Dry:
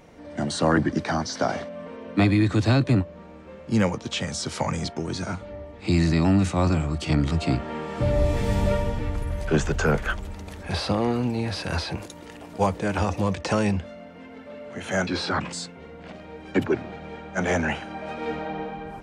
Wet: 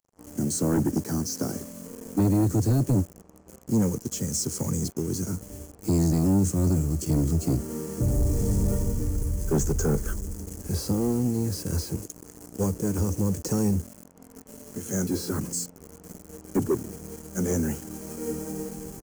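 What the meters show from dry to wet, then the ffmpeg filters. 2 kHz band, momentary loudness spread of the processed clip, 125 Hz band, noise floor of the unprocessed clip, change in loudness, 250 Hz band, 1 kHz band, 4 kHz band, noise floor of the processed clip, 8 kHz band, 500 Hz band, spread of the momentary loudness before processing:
−16.5 dB, 15 LU, −0.5 dB, −44 dBFS, −1.5 dB, −1.0 dB, −11.5 dB, −8.5 dB, −52 dBFS, +6.5 dB, −4.0 dB, 17 LU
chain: -filter_complex "[0:a]highshelf=frequency=3600:gain=-8,asplit=2[link_01][link_02];[link_02]acrusher=bits=5:mix=0:aa=0.000001,volume=-8.5dB[link_03];[link_01][link_03]amix=inputs=2:normalize=0,firequalizer=gain_entry='entry(430,0);entry(650,-18);entry(1200,-14);entry(2600,-20);entry(6500,12)':delay=0.05:min_phase=1,aeval=exprs='sgn(val(0))*max(abs(val(0))-0.00447,0)':channel_layout=same,bandreject=frequency=3700:width=7.7,asoftclip=type=tanh:threshold=-17dB"

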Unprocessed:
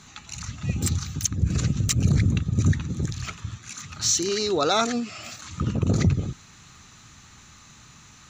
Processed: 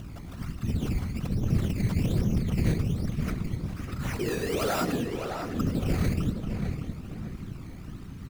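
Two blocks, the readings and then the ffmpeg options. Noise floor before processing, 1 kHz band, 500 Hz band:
−50 dBFS, −5.5 dB, −3.5 dB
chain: -filter_complex "[0:a]bass=frequency=250:gain=4,treble=frequency=4000:gain=-13,aeval=exprs='val(0)+0.0158*(sin(2*PI*60*n/s)+sin(2*PI*2*60*n/s)/2+sin(2*PI*3*60*n/s)/3+sin(2*PI*4*60*n/s)/4+sin(2*PI*5*60*n/s)/5)':channel_layout=same,highshelf=frequency=7000:gain=-7.5,acrossover=split=6900[link_01][link_02];[link_01]asoftclip=type=tanh:threshold=-20dB[link_03];[link_03][link_02]amix=inputs=2:normalize=0,acrusher=samples=14:mix=1:aa=0.000001:lfo=1:lforange=14:lforate=1.2,asplit=2[link_04][link_05];[link_05]adelay=609,lowpass=frequency=3100:poles=1,volume=-5.5dB,asplit=2[link_06][link_07];[link_07]adelay=609,lowpass=frequency=3100:poles=1,volume=0.41,asplit=2[link_08][link_09];[link_09]adelay=609,lowpass=frequency=3100:poles=1,volume=0.41,asplit=2[link_10][link_11];[link_11]adelay=609,lowpass=frequency=3100:poles=1,volume=0.41,asplit=2[link_12][link_13];[link_13]adelay=609,lowpass=frequency=3100:poles=1,volume=0.41[link_14];[link_06][link_08][link_10][link_12][link_14]amix=inputs=5:normalize=0[link_15];[link_04][link_15]amix=inputs=2:normalize=0,acompressor=mode=upward:threshold=-40dB:ratio=2.5,afftfilt=real='hypot(re,im)*cos(2*PI*random(0))':imag='hypot(re,im)*sin(2*PI*random(1))':win_size=512:overlap=0.75,bandreject=frequency=870:width=19,volume=3.5dB"

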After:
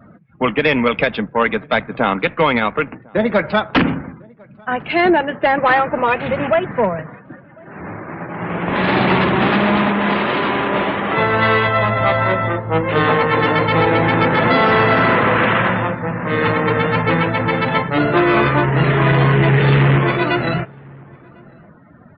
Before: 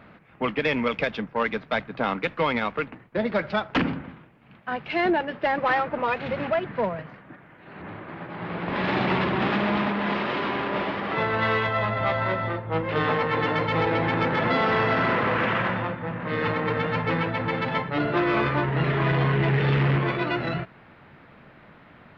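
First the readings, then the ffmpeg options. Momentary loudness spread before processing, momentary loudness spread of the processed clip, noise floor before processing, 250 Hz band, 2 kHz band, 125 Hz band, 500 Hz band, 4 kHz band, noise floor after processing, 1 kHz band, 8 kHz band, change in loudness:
9 LU, 9 LU, −51 dBFS, +9.0 dB, +9.0 dB, +9.0 dB, +9.0 dB, +8.5 dB, −44 dBFS, +9.0 dB, can't be measured, +9.0 dB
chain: -filter_complex "[0:a]afftdn=noise_reduction=27:noise_floor=-46,asplit=2[link_01][link_02];[link_02]adelay=1050,volume=-27dB,highshelf=frequency=4000:gain=-23.6[link_03];[link_01][link_03]amix=inputs=2:normalize=0,volume=9dB"

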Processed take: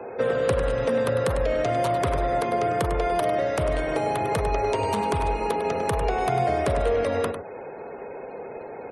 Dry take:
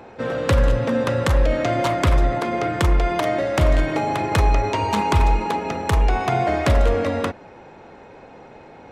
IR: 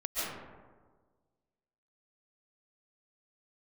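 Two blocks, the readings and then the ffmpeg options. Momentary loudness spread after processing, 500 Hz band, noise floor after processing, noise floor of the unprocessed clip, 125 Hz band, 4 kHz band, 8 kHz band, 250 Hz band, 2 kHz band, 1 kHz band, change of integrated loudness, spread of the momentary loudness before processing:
14 LU, 0.0 dB, −38 dBFS, −44 dBFS, −9.0 dB, −6.5 dB, −3.5 dB, −6.5 dB, −5.0 dB, −2.5 dB, −4.0 dB, 5 LU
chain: -filter_complex "[0:a]lowshelf=frequency=180:gain=-8.5,acrossover=split=180|400|1300|7200[link_01][link_02][link_03][link_04][link_05];[link_01]acompressor=threshold=-31dB:ratio=4[link_06];[link_02]acompressor=threshold=-44dB:ratio=4[link_07];[link_03]acompressor=threshold=-33dB:ratio=4[link_08];[link_04]acompressor=threshold=-41dB:ratio=4[link_09];[link_05]acompressor=threshold=-52dB:ratio=4[link_10];[link_06][link_07][link_08][link_09][link_10]amix=inputs=5:normalize=0,superequalizer=7b=2.51:8b=1.58:16b=2.51,asplit=2[link_11][link_12];[link_12]aecho=0:1:100:0.376[link_13];[link_11][link_13]amix=inputs=2:normalize=0,afftfilt=real='re*gte(hypot(re,im),0.00447)':imag='im*gte(hypot(re,im),0.00447)':win_size=1024:overlap=0.75,volume=3dB"

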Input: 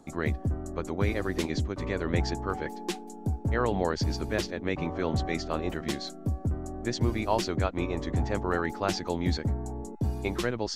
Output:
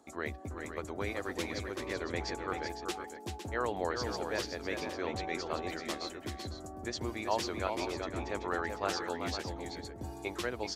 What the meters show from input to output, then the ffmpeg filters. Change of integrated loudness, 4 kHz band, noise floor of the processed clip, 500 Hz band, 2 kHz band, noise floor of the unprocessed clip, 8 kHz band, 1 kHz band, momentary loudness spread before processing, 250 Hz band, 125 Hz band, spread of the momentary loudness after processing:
−6.5 dB, −3.0 dB, −47 dBFS, −5.0 dB, −3.0 dB, −43 dBFS, −3.0 dB, −3.0 dB, 6 LU, −9.0 dB, −14.0 dB, 8 LU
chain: -filter_complex "[0:a]highpass=90,equalizer=frequency=150:width=0.99:gain=-14.5,asplit=2[link_01][link_02];[link_02]aecho=0:1:383|389|507:0.473|0.133|0.335[link_03];[link_01][link_03]amix=inputs=2:normalize=0,volume=-4dB"

